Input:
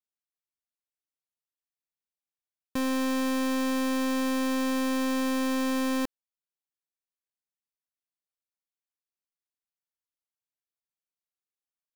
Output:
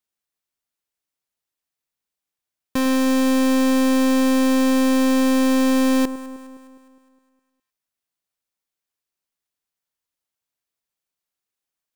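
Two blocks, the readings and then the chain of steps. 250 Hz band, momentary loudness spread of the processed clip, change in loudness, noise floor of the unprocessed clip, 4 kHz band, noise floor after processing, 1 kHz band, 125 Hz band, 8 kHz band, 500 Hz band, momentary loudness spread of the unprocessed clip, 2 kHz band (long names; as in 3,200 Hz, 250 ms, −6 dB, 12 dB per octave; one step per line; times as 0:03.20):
+10.5 dB, 6 LU, +10.0 dB, below −85 dBFS, +7.5 dB, below −85 dBFS, +7.0 dB, can't be measured, +8.5 dB, +10.0 dB, 3 LU, +6.5 dB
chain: delay that swaps between a low-pass and a high-pass 103 ms, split 1,000 Hz, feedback 71%, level −14 dB
level +8 dB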